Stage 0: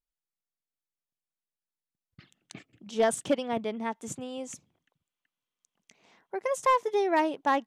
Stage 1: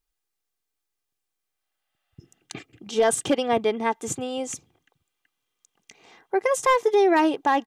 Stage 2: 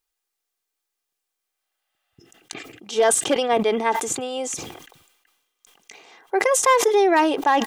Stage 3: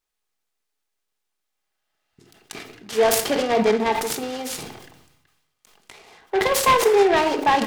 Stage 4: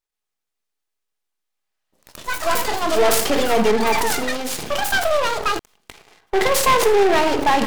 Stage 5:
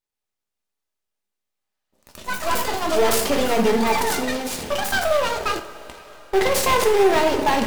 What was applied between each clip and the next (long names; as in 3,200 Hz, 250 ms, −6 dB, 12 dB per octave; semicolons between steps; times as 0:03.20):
healed spectral selection 0:01.40–0:02.33, 500–5,100 Hz both; comb filter 2.5 ms, depth 45%; brickwall limiter −20.5 dBFS, peak gain reduction 6.5 dB; level +8.5 dB
bass and treble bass −13 dB, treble +1 dB; level that may fall only so fast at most 58 dB per second; level +3 dB
rectangular room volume 880 cubic metres, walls furnished, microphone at 1.4 metres; short delay modulated by noise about 1,400 Hz, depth 0.047 ms; level −1.5 dB
gain on one half-wave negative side −12 dB; delay with pitch and tempo change per echo 476 ms, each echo +7 semitones, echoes 3, each echo −6 dB; leveller curve on the samples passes 2
in parallel at −11 dB: sample-and-hold swept by an LFO 20×, swing 60% 0.95 Hz; on the sum: coupled-rooms reverb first 0.3 s, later 4.3 s, from −18 dB, DRR 7 dB; level −3.5 dB